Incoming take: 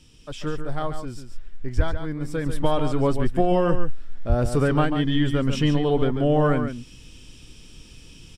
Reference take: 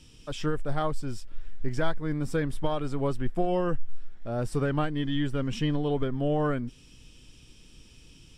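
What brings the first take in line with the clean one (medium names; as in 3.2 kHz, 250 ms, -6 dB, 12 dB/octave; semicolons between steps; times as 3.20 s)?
de-plosive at 1.76/4.28 s; inverse comb 141 ms -8.5 dB; trim 0 dB, from 2.46 s -6.5 dB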